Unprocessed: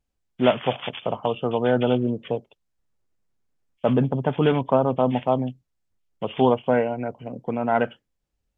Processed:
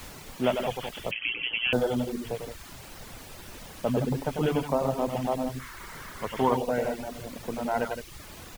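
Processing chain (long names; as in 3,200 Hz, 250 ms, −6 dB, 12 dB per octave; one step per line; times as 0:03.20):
loudspeakers that aren't time-aligned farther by 33 metres −4 dB, 57 metres −6 dB
background noise pink −35 dBFS
0:01.11–0:01.73: voice inversion scrambler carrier 3,200 Hz
0:05.60–0:06.56: gain on a spectral selection 890–2,300 Hz +8 dB
reverb reduction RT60 0.66 s
level −7 dB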